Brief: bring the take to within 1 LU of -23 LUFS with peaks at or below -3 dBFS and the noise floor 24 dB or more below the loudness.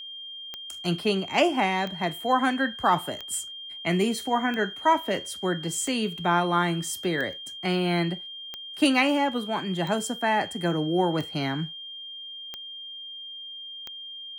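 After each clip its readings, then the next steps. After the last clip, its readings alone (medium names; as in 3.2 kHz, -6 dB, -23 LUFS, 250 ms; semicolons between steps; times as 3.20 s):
clicks found 11; steady tone 3.2 kHz; tone level -37 dBFS; loudness -27.0 LUFS; peak level -9.5 dBFS; loudness target -23.0 LUFS
-> de-click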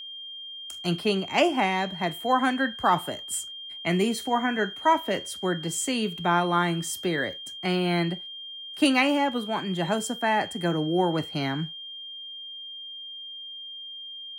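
clicks found 0; steady tone 3.2 kHz; tone level -37 dBFS
-> band-stop 3.2 kHz, Q 30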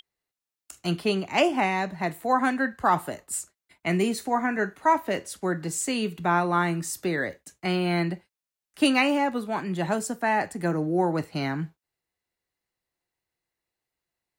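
steady tone not found; loudness -26.0 LUFS; peak level -9.5 dBFS; loudness target -23.0 LUFS
-> trim +3 dB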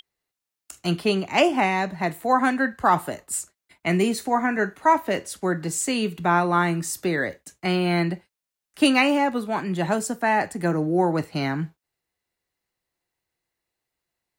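loudness -23.0 LUFS; peak level -7.0 dBFS; noise floor -87 dBFS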